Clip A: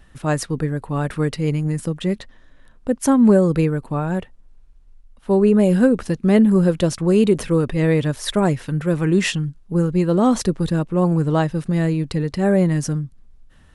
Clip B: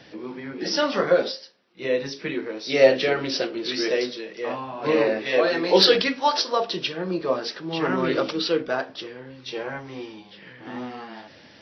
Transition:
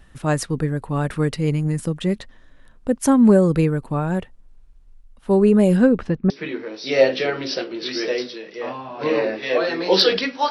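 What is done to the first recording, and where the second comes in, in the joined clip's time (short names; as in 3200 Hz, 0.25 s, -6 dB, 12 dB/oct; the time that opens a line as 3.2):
clip A
5.76–6.3 LPF 6700 Hz -> 1500 Hz
6.3 switch to clip B from 2.13 s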